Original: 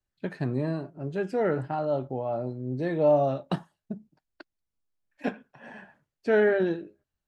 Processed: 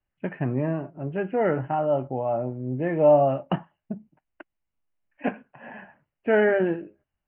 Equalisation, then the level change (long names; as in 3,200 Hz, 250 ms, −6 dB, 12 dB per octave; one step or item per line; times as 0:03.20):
Chebyshev low-pass with heavy ripple 3,000 Hz, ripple 3 dB
parametric band 420 Hz −3.5 dB 0.41 octaves
+5.5 dB